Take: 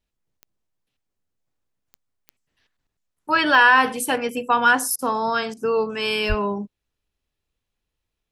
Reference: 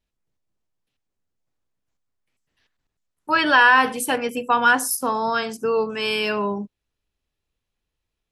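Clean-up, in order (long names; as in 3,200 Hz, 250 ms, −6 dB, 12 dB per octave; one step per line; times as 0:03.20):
click removal
0:06.28–0:06.40: high-pass filter 140 Hz 24 dB per octave
repair the gap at 0:04.96/0:05.54, 27 ms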